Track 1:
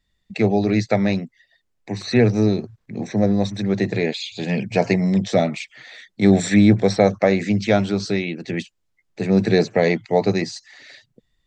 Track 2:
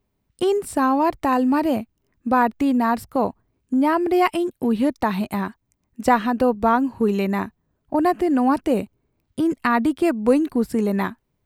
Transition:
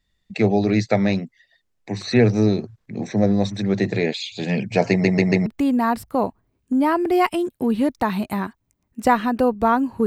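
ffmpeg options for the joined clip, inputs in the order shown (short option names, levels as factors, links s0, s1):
-filter_complex "[0:a]apad=whole_dur=10.06,atrim=end=10.06,asplit=4[s0][s1][s2][s3];[s0]atrim=end=5.042[s4];[s1]atrim=start=4.898:end=5.042[s5];[s2]atrim=start=4.898:end=5.042[s6];[s3]atrim=start=4.898:end=5.042[s7];[1:a]atrim=start=2.468:end=7.07[s8];[s4][s5]acrossfade=d=0.004:c1=hsin:c2=hsin[s9];[s9][s6]acrossfade=d=0.004:c1=hsin:c2=hsin[s10];[s10][s7]acrossfade=d=0.004:c1=hsin:c2=hsin[s11];[s11][s8]acrossfade=d=0.004:c1=hsin:c2=hsin"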